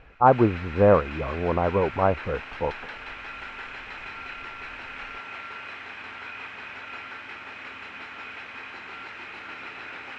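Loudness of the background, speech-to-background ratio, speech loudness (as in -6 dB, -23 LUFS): -37.5 LUFS, 14.5 dB, -23.0 LUFS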